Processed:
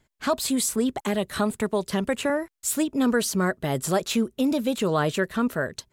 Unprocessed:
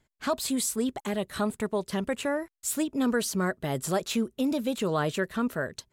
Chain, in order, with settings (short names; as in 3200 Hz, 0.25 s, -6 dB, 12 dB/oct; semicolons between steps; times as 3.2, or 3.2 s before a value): 0.68–2.3 three-band squash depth 40%; gain +4 dB